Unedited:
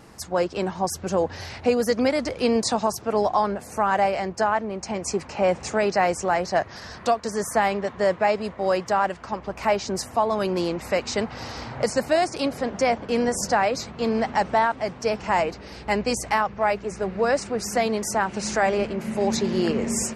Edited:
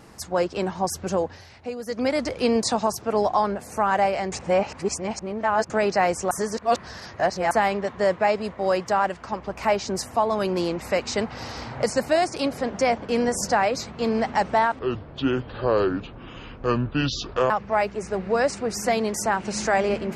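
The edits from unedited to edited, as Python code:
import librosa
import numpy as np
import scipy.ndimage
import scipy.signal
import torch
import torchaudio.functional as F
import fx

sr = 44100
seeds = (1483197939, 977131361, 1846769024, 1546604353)

y = fx.edit(x, sr, fx.fade_down_up(start_s=1.12, length_s=1.04, db=-11.5, fade_s=0.31),
    fx.reverse_span(start_s=4.32, length_s=1.38),
    fx.reverse_span(start_s=6.31, length_s=1.2),
    fx.speed_span(start_s=14.79, length_s=1.6, speed=0.59), tone=tone)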